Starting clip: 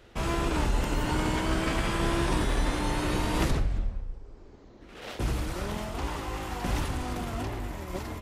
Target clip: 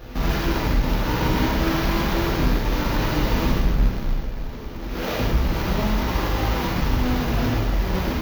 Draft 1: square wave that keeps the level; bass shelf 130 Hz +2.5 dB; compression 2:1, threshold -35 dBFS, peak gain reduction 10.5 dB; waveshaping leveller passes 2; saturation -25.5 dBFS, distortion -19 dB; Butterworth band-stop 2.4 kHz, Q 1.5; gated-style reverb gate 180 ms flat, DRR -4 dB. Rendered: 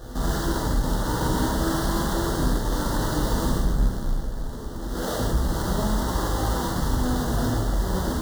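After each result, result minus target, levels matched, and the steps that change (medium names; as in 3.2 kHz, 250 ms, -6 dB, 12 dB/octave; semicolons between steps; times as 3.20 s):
saturation: distortion +17 dB; 8 kHz band +8.0 dB
change: saturation -15.5 dBFS, distortion -36 dB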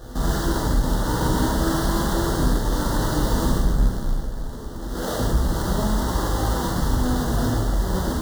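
8 kHz band +7.0 dB
change: Butterworth band-stop 8.8 kHz, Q 1.5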